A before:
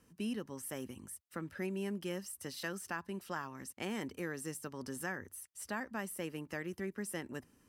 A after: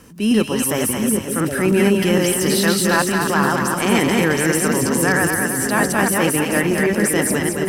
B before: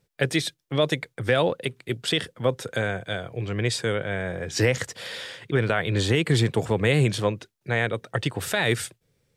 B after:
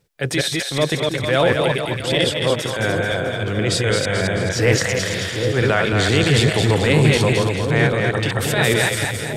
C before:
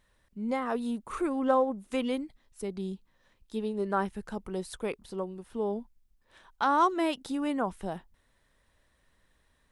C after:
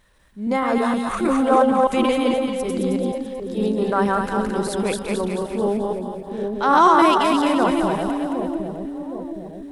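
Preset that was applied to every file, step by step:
reverse delay 0.156 s, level -2.5 dB; transient shaper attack -7 dB, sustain +2 dB; split-band echo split 630 Hz, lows 0.764 s, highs 0.218 s, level -4.5 dB; normalise peaks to -2 dBFS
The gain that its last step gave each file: +22.0, +5.0, +10.0 dB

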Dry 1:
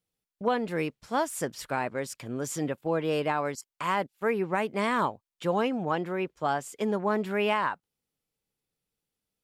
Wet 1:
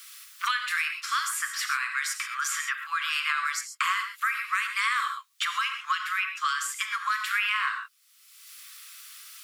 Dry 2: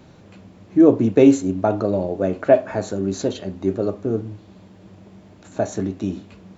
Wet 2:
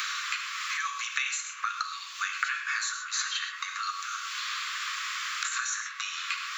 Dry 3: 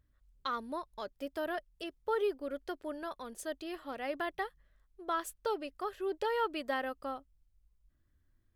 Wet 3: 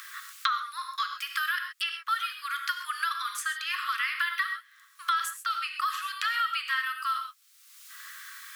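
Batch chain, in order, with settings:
compressor 2:1, threshold -31 dBFS; Chebyshev high-pass 1100 Hz, order 8; non-linear reverb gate 0.15 s flat, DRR 5 dB; three-band squash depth 100%; normalise peaks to -12 dBFS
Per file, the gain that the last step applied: +11.0, +15.5, +14.0 dB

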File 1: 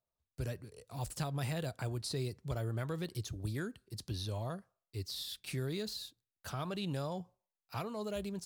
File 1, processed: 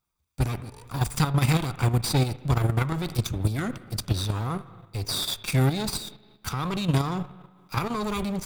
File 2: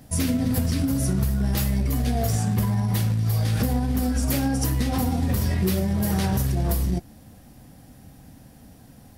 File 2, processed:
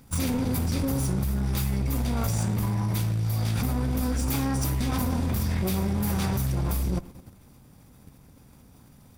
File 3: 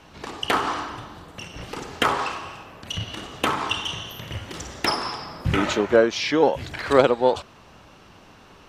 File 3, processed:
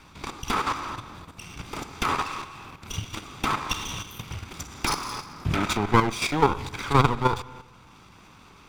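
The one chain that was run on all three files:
minimum comb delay 0.84 ms; spring tank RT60 1.3 s, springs 38/51/58 ms, chirp 75 ms, DRR 14.5 dB; level quantiser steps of 9 dB; match loudness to -27 LUFS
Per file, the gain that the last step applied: +17.0, +1.5, +2.5 dB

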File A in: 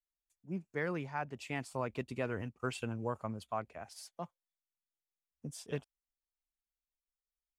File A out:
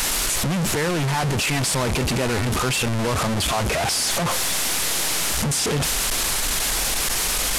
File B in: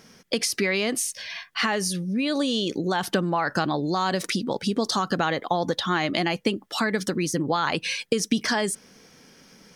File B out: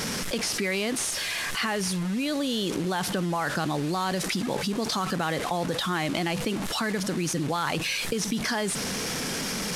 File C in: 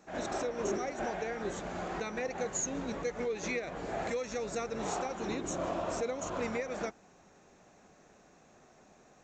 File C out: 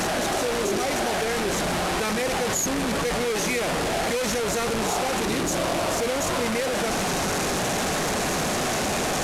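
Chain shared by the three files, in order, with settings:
delta modulation 64 kbps, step -29 dBFS; dynamic EQ 150 Hz, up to +4 dB, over -43 dBFS, Q 2.3; fast leveller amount 70%; normalise peaks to -12 dBFS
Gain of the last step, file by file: +10.0, -8.0, +6.5 dB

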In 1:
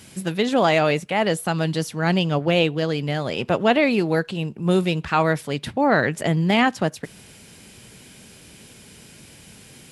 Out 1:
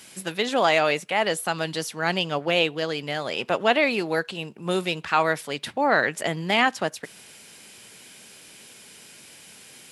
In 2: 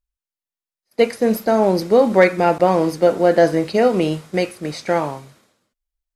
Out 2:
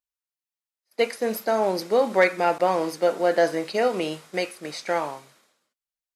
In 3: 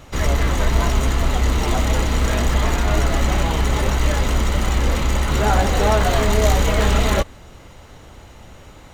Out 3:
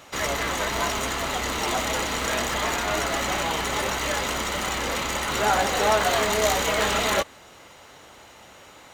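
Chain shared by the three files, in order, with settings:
HPF 670 Hz 6 dB/oct; match loudness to -24 LUFS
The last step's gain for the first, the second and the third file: +1.0, -2.5, +0.5 dB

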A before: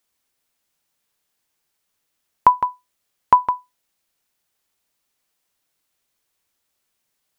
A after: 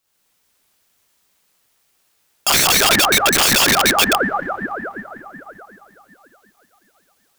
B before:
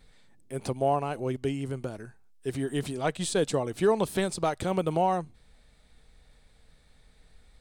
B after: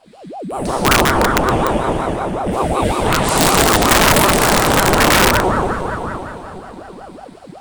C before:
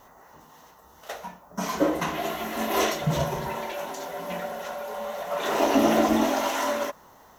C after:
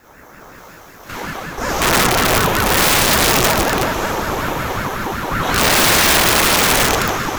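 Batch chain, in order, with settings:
Schroeder reverb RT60 3.6 s, combs from 25 ms, DRR -10 dB; wrapped overs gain 10.5 dB; ring modulator with a swept carrier 490 Hz, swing 65%, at 5.4 Hz; match loudness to -14 LUFS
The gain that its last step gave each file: +4.0, +8.0, +5.5 dB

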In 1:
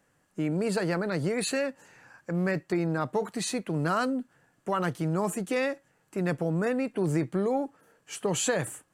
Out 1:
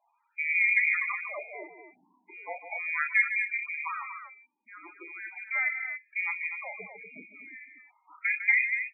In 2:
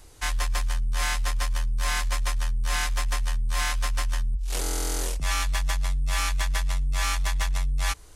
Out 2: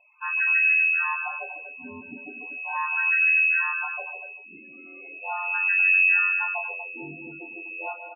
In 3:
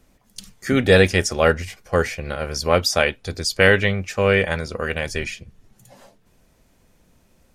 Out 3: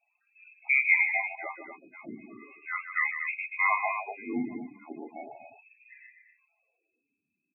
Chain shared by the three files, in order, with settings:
inverted band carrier 2600 Hz; wah 0.38 Hz 240–2000 Hz, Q 2.9; on a send: loudspeakers at several distances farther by 11 m -7 dB, 52 m -9 dB, 83 m -8 dB; on the sum: loudest bins only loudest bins 16; normalise peaks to -12 dBFS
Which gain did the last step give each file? +5.0, +5.5, -3.0 dB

